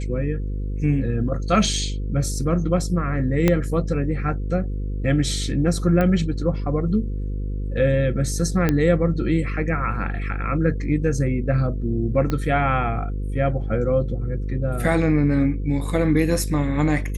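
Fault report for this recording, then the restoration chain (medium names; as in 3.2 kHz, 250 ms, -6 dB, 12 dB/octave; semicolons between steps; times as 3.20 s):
buzz 50 Hz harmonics 10 -26 dBFS
3.48 s: pop -5 dBFS
6.01 s: pop -11 dBFS
8.69 s: pop -7 dBFS
12.30 s: pop -12 dBFS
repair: de-click; de-hum 50 Hz, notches 10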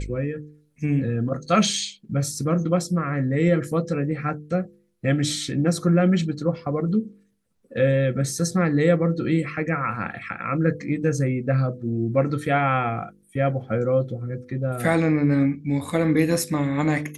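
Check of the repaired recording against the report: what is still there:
3.48 s: pop
12.30 s: pop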